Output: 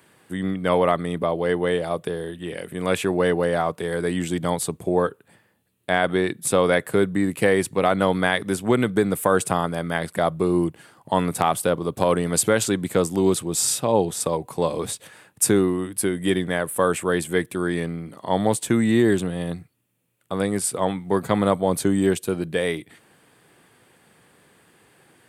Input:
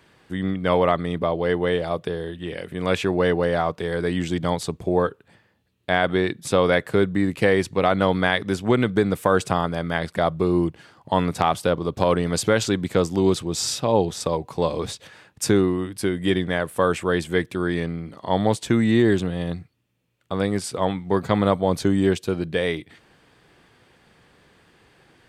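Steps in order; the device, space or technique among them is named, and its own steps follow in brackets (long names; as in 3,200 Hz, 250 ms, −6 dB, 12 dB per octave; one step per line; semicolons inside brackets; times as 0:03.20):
budget condenser microphone (high-pass filter 110 Hz; high shelf with overshoot 7,200 Hz +9.5 dB, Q 1.5)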